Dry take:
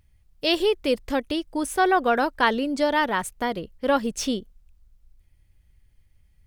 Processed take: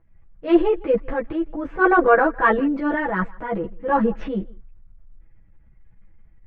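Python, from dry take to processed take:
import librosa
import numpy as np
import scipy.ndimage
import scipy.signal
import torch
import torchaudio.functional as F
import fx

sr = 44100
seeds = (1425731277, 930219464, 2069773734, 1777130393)

p1 = scipy.signal.sosfilt(scipy.signal.butter(4, 1800.0, 'lowpass', fs=sr, output='sos'), x)
p2 = p1 + 0.88 * np.pad(p1, (int(6.1 * sr / 1000.0), 0))[:len(p1)]
p3 = fx.level_steps(p2, sr, step_db=19)
p4 = p2 + (p3 * librosa.db_to_amplitude(3.0))
p5 = fx.transient(p4, sr, attack_db=-7, sustain_db=6)
p6 = p5 + fx.echo_single(p5, sr, ms=158, db=-23.5, dry=0)
p7 = fx.ensemble(p6, sr)
y = p7 * librosa.db_to_amplitude(2.0)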